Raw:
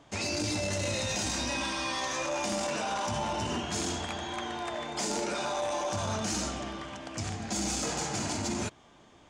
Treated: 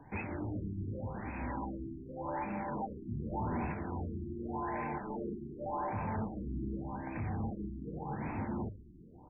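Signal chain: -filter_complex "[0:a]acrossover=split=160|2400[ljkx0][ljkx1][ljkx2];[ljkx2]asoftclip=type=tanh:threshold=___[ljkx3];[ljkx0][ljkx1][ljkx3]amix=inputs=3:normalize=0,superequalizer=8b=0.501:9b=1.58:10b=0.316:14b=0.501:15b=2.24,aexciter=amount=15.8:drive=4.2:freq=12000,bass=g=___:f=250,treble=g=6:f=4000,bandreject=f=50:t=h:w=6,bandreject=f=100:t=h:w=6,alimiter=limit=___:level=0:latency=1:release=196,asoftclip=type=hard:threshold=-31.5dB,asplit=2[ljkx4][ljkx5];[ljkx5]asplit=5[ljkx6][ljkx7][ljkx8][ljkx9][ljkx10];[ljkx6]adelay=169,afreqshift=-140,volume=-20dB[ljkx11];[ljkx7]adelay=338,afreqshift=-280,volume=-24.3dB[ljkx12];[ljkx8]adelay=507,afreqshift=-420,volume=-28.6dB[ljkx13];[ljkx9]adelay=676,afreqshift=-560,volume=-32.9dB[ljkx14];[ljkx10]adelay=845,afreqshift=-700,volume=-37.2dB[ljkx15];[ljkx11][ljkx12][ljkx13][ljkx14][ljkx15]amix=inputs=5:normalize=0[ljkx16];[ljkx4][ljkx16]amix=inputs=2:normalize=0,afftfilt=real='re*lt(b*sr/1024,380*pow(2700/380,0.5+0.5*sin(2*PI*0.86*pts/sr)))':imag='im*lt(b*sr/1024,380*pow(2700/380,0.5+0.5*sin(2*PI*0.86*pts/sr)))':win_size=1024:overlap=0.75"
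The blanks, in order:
-35dB, 7, -16dB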